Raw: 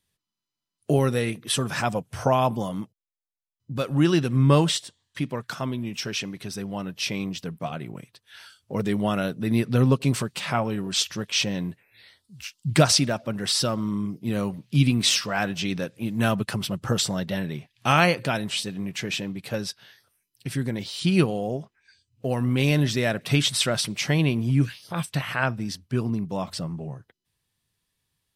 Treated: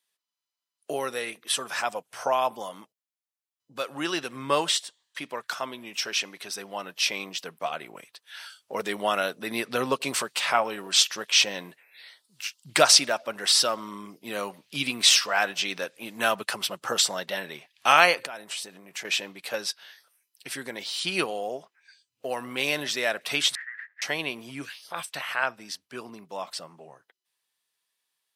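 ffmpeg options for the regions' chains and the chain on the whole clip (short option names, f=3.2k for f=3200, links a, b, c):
-filter_complex "[0:a]asettb=1/sr,asplit=3[a][b][c];[a]atrim=end=18.254[d];[b]atrim=start=18.25:end=19.05,asetpts=PTS-STARTPTS,afade=t=in:d=0.004:c=qsin,afade=t=out:st=0.796:d=0.004:c=qsin,equalizer=f=3.4k:w=0.81:g=-6.5,acompressor=threshold=-32dB:ratio=16:attack=3.2:release=140:knee=1:detection=peak[e];[c]atrim=start=19.046[f];[d][e]acrossfade=d=0.004:c1=hsin:c2=qsin[g];[g][f]acrossfade=d=0.004:c1=qsin:c2=hsin,asettb=1/sr,asplit=3[h][i][j];[h]atrim=end=23.554[k];[i]atrim=start=23.55:end=24.02,asetpts=PTS-STARTPTS,afade=t=in:d=0.004:c=qsin,afade=t=out:st=0.466:d=0.004:c=qsin,aemphasis=mode=production:type=50fm,aeval=exprs='abs(val(0))':c=same,asuperpass=centerf=1800:order=4:qfactor=6.5[l];[j]atrim=start=24.016[m];[k][l]acrossfade=d=0.004:c1=hsin:c2=qsin[n];[n][m]acrossfade=d=0.004:c1=qsin:c2=hsin,highpass=620,dynaudnorm=f=730:g=17:m=11.5dB,volume=-1dB"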